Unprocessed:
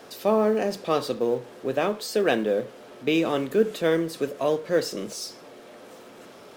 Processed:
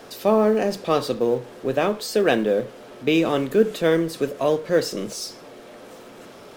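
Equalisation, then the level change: low shelf 75 Hz +11 dB; +3.0 dB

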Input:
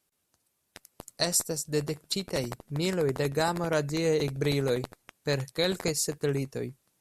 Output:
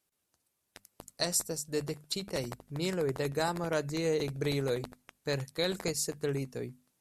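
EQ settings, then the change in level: notches 50/100/150/200/250 Hz; -4.0 dB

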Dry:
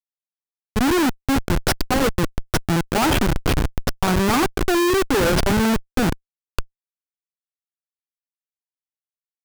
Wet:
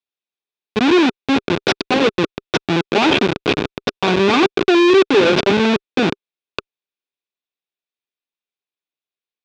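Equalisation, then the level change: speaker cabinet 300–5800 Hz, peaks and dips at 400 Hz +5 dB, 1300 Hz +6 dB, 2500 Hz +9 dB, 3600 Hz +9 dB; low shelf 420 Hz +10.5 dB; notch 1300 Hz, Q 8.2; 0.0 dB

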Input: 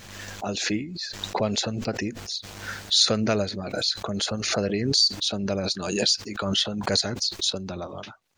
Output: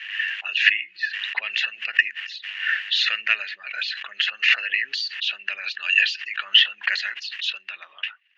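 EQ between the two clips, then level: resonant high-pass 1800 Hz, resonance Q 9.6; synth low-pass 2800 Hz, resonance Q 13; -4.5 dB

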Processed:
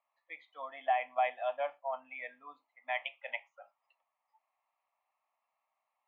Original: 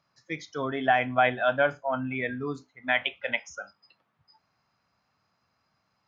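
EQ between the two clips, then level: HPF 500 Hz 24 dB/oct; air absorption 390 m; fixed phaser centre 1500 Hz, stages 6; -4.0 dB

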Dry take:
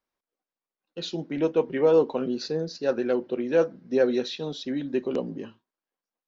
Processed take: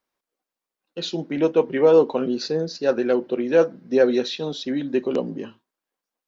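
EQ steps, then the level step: low shelf 86 Hz -8 dB; +5.0 dB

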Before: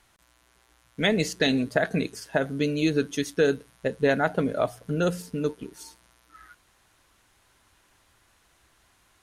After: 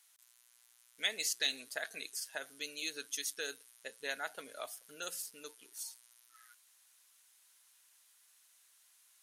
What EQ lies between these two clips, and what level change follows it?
differentiator; bell 160 Hz -7 dB 0.86 oct; low shelf 210 Hz -4.5 dB; +1.0 dB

